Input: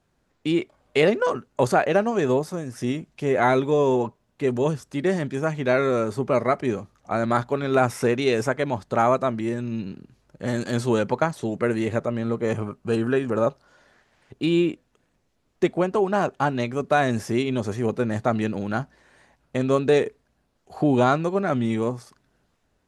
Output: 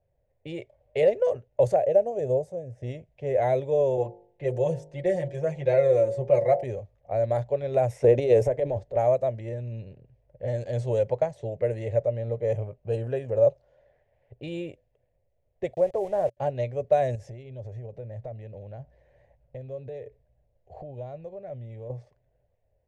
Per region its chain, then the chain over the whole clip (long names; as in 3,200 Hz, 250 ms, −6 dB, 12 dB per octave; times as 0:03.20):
0:01.76–0:02.83: high-pass filter 44 Hz + flat-topped bell 2,300 Hz −8.5 dB 2.8 octaves
0:03.97–0:06.64: comb filter 5.7 ms, depth 97% + hum removal 50.83 Hz, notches 19
0:08.04–0:08.97: parametric band 350 Hz +10 dB 1.8 octaves + transient designer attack −8 dB, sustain +8 dB + expander for the loud parts, over −26 dBFS
0:15.74–0:16.37: low-pass filter 1,900 Hz 24 dB per octave + hum removal 309.4 Hz, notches 3 + centre clipping without the shift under −33 dBFS
0:17.15–0:21.90: bass and treble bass +5 dB, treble +6 dB + downward compressor 5 to 1, threshold −32 dBFS
whole clip: low-pass that shuts in the quiet parts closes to 2,300 Hz, open at −15.5 dBFS; drawn EQ curve 120 Hz 0 dB, 200 Hz −18 dB, 320 Hz −18 dB, 560 Hz +5 dB, 1,300 Hz −27 dB, 1,900 Hz −11 dB, 2,800 Hz −13 dB, 4,600 Hz −17 dB, 6,600 Hz −12 dB